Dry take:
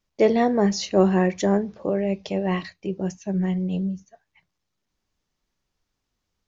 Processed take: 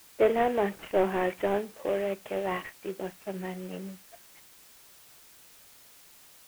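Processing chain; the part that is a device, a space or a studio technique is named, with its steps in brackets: army field radio (BPF 400–3400 Hz; CVSD 16 kbps; white noise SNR 23 dB); gain -1.5 dB

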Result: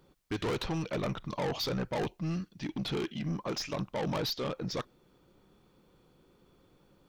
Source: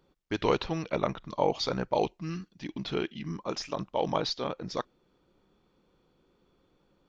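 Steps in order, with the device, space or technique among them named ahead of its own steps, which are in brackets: open-reel tape (soft clip -33 dBFS, distortion -4 dB; bell 120 Hz +4.5 dB 0.9 oct; white noise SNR 47 dB); gain +3.5 dB

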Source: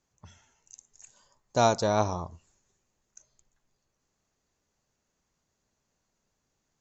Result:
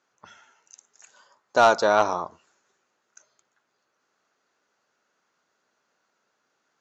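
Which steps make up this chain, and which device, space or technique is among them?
intercom (BPF 350–4700 Hz; bell 1400 Hz +9 dB 0.45 oct; soft clip -13.5 dBFS, distortion -16 dB); gain +7 dB

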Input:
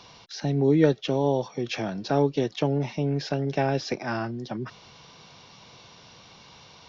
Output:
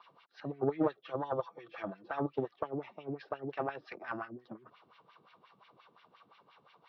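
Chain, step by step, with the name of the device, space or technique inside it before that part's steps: 1.01–2.34 comb 6 ms, depth 65%; wah-wah guitar rig (wah 5.7 Hz 250–2400 Hz, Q 2.1; tube stage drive 17 dB, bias 0.8; speaker cabinet 93–4400 Hz, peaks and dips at 250 Hz -5 dB, 1200 Hz +9 dB, 2200 Hz -3 dB)

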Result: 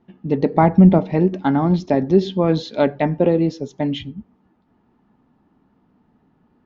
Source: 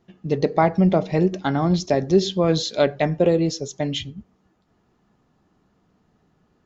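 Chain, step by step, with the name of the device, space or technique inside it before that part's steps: inside a cardboard box (LPF 3000 Hz 12 dB/oct; small resonant body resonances 250/880 Hz, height 9 dB, ringing for 35 ms); 0.53–0.99 low shelf 170 Hz +10 dB

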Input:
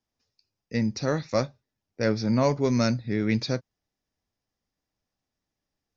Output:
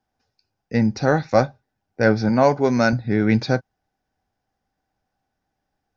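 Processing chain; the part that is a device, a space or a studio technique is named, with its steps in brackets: inside a helmet (high shelf 3100 Hz -9 dB; small resonant body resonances 780/1500 Hz, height 12 dB, ringing for 30 ms); 2.29–2.93 HPF 240 Hz 6 dB/oct; gain +7 dB

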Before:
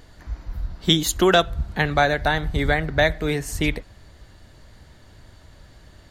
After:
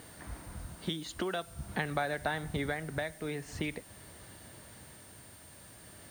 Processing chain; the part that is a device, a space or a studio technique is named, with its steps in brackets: medium wave at night (BPF 120–3900 Hz; compressor 6:1, threshold -30 dBFS, peak gain reduction 16.5 dB; tremolo 0.46 Hz, depth 37%; whine 9000 Hz -56 dBFS; white noise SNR 20 dB)

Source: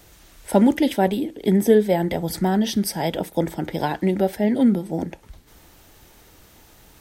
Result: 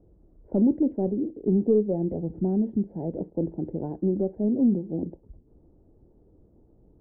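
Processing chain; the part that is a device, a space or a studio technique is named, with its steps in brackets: overdriven synthesiser ladder filter (soft clip -9 dBFS, distortion -18 dB; ladder low-pass 540 Hz, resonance 25%); gain +1.5 dB

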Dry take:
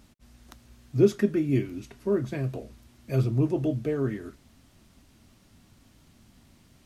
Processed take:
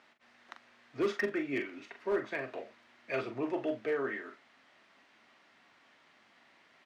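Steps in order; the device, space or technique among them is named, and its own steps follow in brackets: megaphone (BPF 660–2800 Hz; bell 1900 Hz +5.5 dB 0.48 oct; hard clip -28.5 dBFS, distortion -11 dB; doubler 42 ms -8.5 dB); 2.48–3.21 dynamic EQ 2600 Hz, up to +5 dB, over -56 dBFS, Q 0.99; gain +3 dB

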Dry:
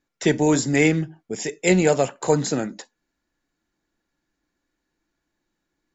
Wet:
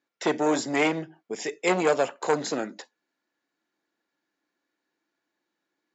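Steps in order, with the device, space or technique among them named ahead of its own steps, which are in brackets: public-address speaker with an overloaded transformer (core saturation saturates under 940 Hz; BPF 310–5400 Hz); gain -1 dB

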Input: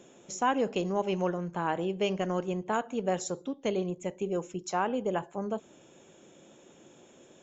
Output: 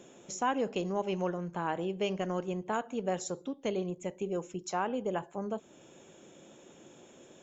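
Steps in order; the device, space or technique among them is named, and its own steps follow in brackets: parallel compression (in parallel at -2.5 dB: compressor, threshold -43 dBFS, peak gain reduction 19.5 dB); on the sum: gain -4 dB

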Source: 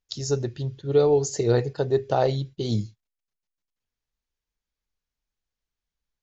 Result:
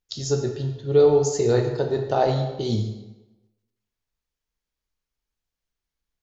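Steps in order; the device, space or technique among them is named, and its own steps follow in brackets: bathroom (reverb RT60 1.1 s, pre-delay 10 ms, DRR 3 dB)

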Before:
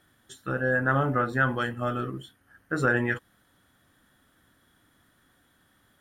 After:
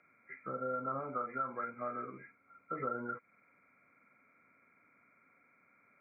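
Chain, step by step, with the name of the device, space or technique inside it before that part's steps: 0.99–2.21 tilt +2 dB/oct; hearing aid with frequency lowering (nonlinear frequency compression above 1300 Hz 4:1; compressor 2.5:1, threshold -33 dBFS, peak gain reduction 10.5 dB; speaker cabinet 260–7000 Hz, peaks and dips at 330 Hz -9 dB, 820 Hz -8 dB, 1700 Hz -10 dB, 2600 Hz -4 dB); gain -1.5 dB

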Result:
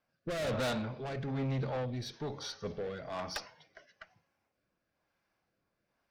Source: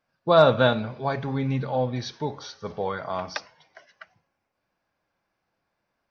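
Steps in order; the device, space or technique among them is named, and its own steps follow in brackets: 1.45–3.12 dynamic EQ 1100 Hz, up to -7 dB, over -44 dBFS, Q 1.2; overdriven rotary cabinet (tube stage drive 30 dB, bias 0.25; rotary speaker horn 1.1 Hz)

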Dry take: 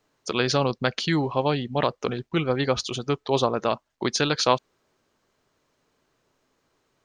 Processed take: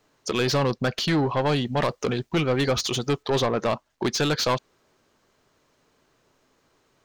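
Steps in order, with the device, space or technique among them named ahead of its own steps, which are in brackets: 1.49–3.23 high shelf 5200 Hz +9 dB; saturation between pre-emphasis and de-emphasis (high shelf 4900 Hz +9.5 dB; soft clip -22 dBFS, distortion -8 dB; high shelf 4900 Hz -9.5 dB); gain +5 dB

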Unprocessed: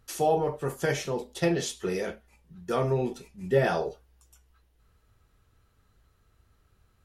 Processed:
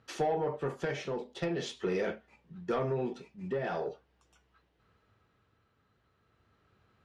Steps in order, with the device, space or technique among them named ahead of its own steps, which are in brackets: AM radio (BPF 130–3500 Hz; compressor 6:1, threshold -27 dBFS, peak gain reduction 9.5 dB; soft clip -23.5 dBFS, distortion -19 dB; tremolo 0.43 Hz, depth 38%); gain +2.5 dB

